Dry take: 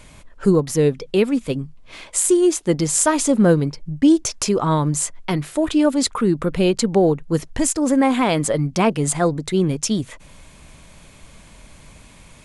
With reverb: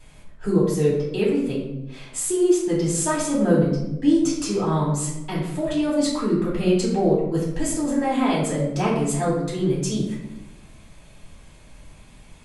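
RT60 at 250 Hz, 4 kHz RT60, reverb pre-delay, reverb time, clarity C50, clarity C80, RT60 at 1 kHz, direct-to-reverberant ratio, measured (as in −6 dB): 1.3 s, 0.60 s, 3 ms, 1.0 s, 2.5 dB, 5.5 dB, 0.85 s, −6.5 dB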